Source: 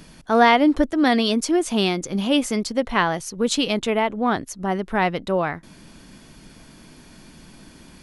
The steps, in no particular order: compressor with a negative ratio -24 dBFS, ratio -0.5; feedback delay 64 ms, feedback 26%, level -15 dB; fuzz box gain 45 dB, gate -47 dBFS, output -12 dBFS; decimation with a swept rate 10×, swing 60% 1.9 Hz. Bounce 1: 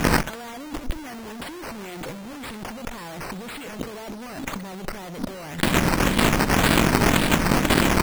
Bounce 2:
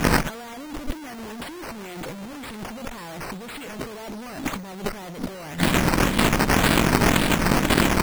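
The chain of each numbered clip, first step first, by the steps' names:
fuzz box > compressor with a negative ratio > feedback delay > decimation with a swept rate; fuzz box > feedback delay > decimation with a swept rate > compressor with a negative ratio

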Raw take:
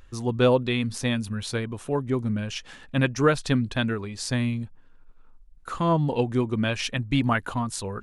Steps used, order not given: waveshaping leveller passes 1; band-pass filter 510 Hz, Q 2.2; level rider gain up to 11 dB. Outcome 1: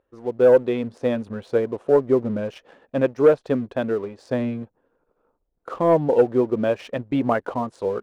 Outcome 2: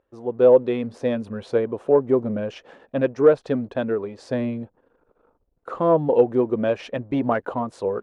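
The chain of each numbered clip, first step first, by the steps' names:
level rider > band-pass filter > waveshaping leveller; level rider > waveshaping leveller > band-pass filter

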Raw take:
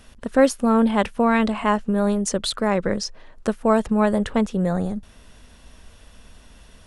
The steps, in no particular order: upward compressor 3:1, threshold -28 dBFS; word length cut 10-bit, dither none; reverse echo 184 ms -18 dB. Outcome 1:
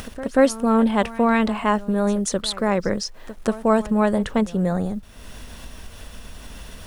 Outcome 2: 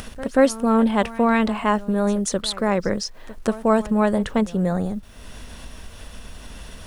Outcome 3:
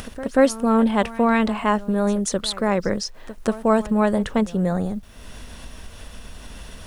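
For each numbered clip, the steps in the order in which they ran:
word length cut > reverse echo > upward compressor; upward compressor > word length cut > reverse echo; reverse echo > upward compressor > word length cut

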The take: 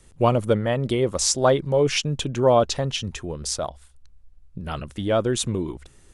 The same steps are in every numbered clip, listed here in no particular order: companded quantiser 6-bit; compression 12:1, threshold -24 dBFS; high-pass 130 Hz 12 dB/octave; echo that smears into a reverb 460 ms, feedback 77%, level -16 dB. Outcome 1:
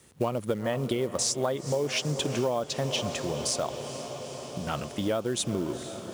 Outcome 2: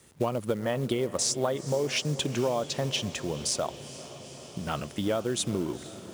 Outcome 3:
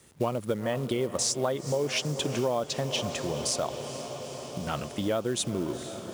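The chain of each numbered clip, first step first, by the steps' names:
high-pass > companded quantiser > echo that smears into a reverb > compression; companded quantiser > high-pass > compression > echo that smears into a reverb; echo that smears into a reverb > compression > companded quantiser > high-pass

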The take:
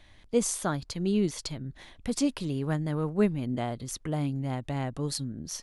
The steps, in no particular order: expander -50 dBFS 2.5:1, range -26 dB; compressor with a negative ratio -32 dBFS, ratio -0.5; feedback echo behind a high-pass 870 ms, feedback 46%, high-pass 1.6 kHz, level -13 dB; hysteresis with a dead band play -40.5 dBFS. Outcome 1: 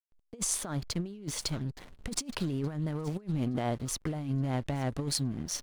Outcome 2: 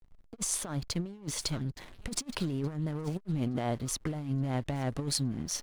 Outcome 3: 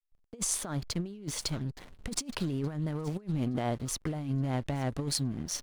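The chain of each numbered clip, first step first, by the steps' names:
feedback echo behind a high-pass > expander > hysteresis with a dead band > compressor with a negative ratio; feedback echo behind a high-pass > compressor with a negative ratio > expander > hysteresis with a dead band; feedback echo behind a high-pass > hysteresis with a dead band > compressor with a negative ratio > expander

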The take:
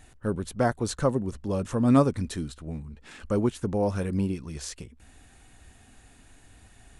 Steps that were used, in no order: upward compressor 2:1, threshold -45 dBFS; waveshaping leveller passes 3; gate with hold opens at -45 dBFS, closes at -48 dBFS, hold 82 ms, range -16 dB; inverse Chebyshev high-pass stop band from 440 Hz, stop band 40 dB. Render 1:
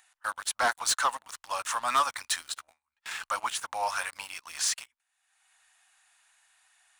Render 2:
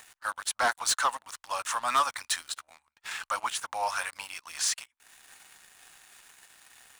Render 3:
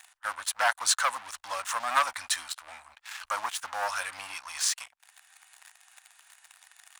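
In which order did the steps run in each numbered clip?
inverse Chebyshev high-pass > gate with hold > waveshaping leveller > upward compressor; upward compressor > inverse Chebyshev high-pass > waveshaping leveller > gate with hold; waveshaping leveller > inverse Chebyshev high-pass > upward compressor > gate with hold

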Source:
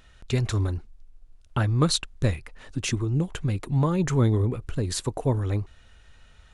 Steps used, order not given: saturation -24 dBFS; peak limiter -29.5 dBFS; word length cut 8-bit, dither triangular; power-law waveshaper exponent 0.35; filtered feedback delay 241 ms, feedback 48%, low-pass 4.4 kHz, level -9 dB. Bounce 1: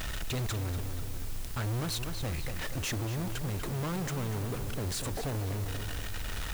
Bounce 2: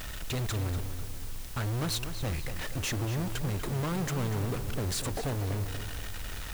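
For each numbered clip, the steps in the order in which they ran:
saturation > power-law waveshaper > filtered feedback delay > peak limiter > word length cut; saturation > peak limiter > power-law waveshaper > word length cut > filtered feedback delay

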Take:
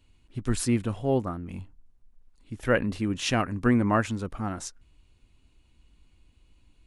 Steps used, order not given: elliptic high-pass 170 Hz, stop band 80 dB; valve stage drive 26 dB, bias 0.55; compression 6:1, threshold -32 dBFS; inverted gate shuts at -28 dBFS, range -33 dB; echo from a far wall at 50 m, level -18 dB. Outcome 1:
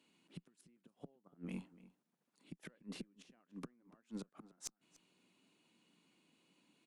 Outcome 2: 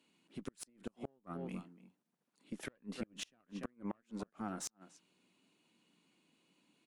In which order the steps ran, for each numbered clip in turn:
compression > inverted gate > elliptic high-pass > valve stage > echo from a far wall; echo from a far wall > compression > elliptic high-pass > valve stage > inverted gate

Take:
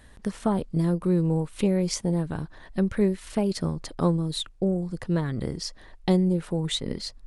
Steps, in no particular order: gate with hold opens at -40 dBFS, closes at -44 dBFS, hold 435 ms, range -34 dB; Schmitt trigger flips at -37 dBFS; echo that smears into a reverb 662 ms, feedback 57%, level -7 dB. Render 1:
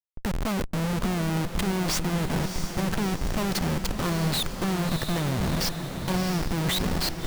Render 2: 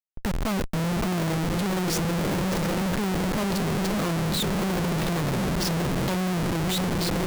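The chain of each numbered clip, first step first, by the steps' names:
Schmitt trigger > gate with hold > echo that smears into a reverb; echo that smears into a reverb > Schmitt trigger > gate with hold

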